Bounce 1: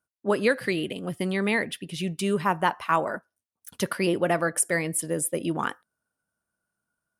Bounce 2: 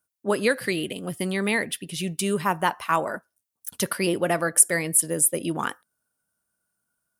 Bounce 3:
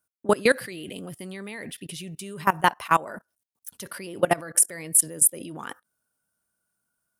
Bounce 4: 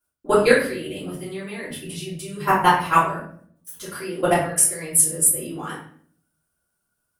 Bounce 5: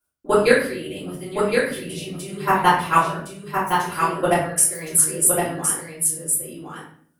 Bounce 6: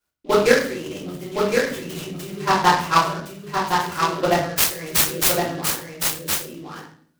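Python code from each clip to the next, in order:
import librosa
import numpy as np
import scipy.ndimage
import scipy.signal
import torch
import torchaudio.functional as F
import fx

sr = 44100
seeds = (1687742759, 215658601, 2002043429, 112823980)

y1 = fx.high_shelf(x, sr, hz=6100.0, db=11.5)
y2 = fx.level_steps(y1, sr, step_db=21)
y2 = F.gain(torch.from_numpy(y2), 5.0).numpy()
y3 = fx.room_shoebox(y2, sr, seeds[0], volume_m3=72.0, walls='mixed', distance_m=3.0)
y3 = F.gain(torch.from_numpy(y3), -8.0).numpy()
y4 = y3 + 10.0 ** (-4.5 / 20.0) * np.pad(y3, (int(1064 * sr / 1000.0), 0))[:len(y3)]
y5 = fx.noise_mod_delay(y4, sr, seeds[1], noise_hz=3000.0, depth_ms=0.039)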